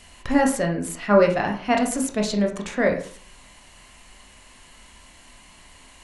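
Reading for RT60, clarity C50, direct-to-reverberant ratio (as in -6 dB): 0.45 s, 8.5 dB, 1.0 dB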